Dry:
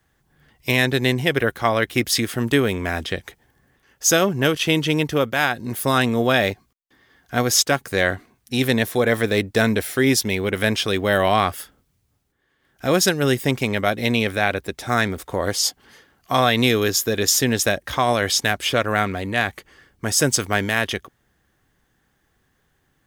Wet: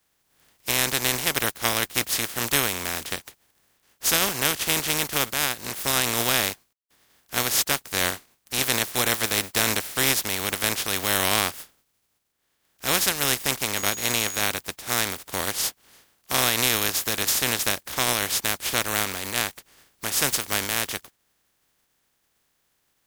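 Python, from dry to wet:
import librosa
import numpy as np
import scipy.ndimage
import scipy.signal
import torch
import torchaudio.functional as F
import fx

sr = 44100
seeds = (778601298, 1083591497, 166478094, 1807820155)

y = fx.spec_flatten(x, sr, power=0.27)
y = fx.dmg_tone(y, sr, hz=6700.0, level_db=-29.0, at=(13.75, 14.4), fade=0.02)
y = y * librosa.db_to_amplitude(-4.5)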